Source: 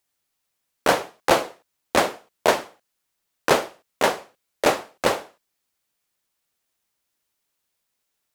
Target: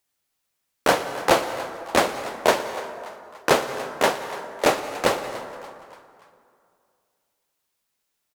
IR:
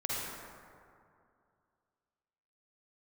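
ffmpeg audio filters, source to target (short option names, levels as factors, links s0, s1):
-filter_complex "[0:a]asplit=5[s0][s1][s2][s3][s4];[s1]adelay=289,afreqshift=140,volume=0.133[s5];[s2]adelay=578,afreqshift=280,volume=0.0624[s6];[s3]adelay=867,afreqshift=420,volume=0.0295[s7];[s4]adelay=1156,afreqshift=560,volume=0.0138[s8];[s0][s5][s6][s7][s8]amix=inputs=5:normalize=0,asplit=2[s9][s10];[1:a]atrim=start_sample=2205,adelay=117[s11];[s10][s11]afir=irnorm=-1:irlink=0,volume=0.158[s12];[s9][s12]amix=inputs=2:normalize=0"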